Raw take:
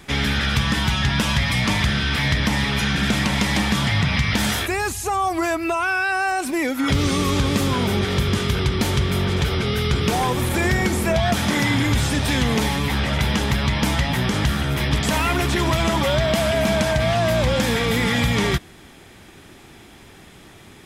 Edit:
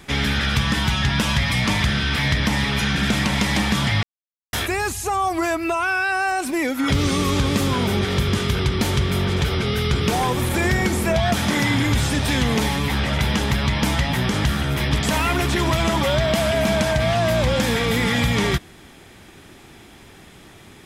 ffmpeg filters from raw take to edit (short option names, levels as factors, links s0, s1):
-filter_complex "[0:a]asplit=3[s0][s1][s2];[s0]atrim=end=4.03,asetpts=PTS-STARTPTS,afade=t=out:st=4.026:d=0.004:c=hsin[s3];[s1]atrim=start=4.03:end=4.53,asetpts=PTS-STARTPTS,volume=0[s4];[s2]atrim=start=4.53,asetpts=PTS-STARTPTS,afade=t=in:d=0.004:c=hsin[s5];[s3][s4][s5]concat=n=3:v=0:a=1"